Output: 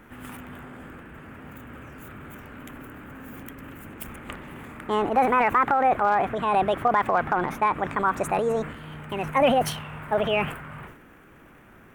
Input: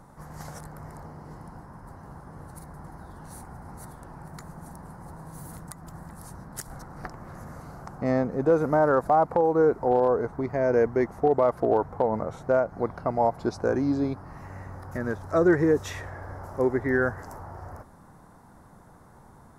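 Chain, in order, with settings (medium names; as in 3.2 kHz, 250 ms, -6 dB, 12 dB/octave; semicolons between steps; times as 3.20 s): transient shaper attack +1 dB, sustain +8 dB; wide varispeed 1.64×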